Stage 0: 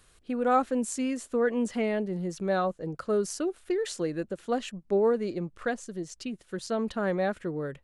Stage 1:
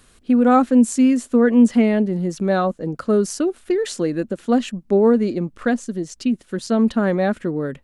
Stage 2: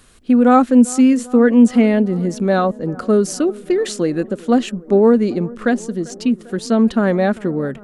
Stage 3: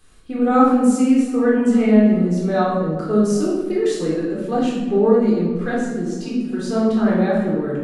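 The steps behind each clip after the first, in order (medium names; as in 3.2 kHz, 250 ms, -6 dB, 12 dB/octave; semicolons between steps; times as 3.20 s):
peaking EQ 240 Hz +10 dB 0.55 oct; trim +7 dB
bucket-brigade echo 395 ms, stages 4096, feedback 71%, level -21.5 dB; trim +3 dB
simulated room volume 650 m³, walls mixed, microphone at 3.8 m; trim -12 dB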